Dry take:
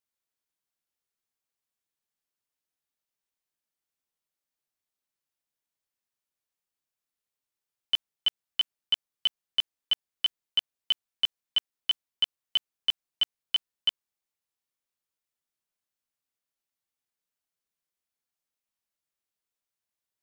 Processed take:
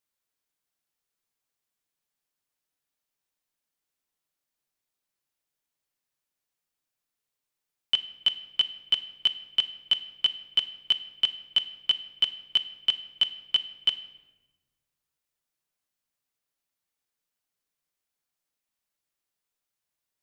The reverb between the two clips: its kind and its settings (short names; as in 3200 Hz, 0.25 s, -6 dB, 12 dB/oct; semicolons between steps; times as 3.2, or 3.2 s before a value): shoebox room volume 690 m³, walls mixed, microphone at 0.41 m; gain +3 dB